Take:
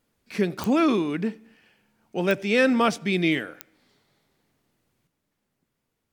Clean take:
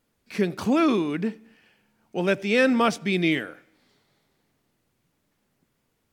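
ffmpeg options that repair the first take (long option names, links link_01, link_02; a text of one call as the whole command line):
ffmpeg -i in.wav -af "adeclick=threshold=4,asetnsamples=nb_out_samples=441:pad=0,asendcmd='5.07 volume volume 6dB',volume=0dB" out.wav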